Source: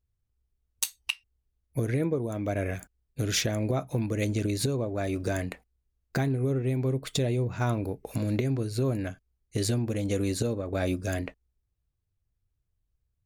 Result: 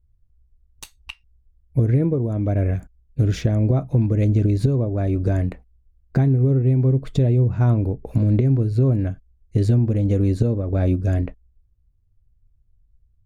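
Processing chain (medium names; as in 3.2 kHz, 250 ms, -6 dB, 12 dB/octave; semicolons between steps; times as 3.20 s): tilt EQ -4 dB/octave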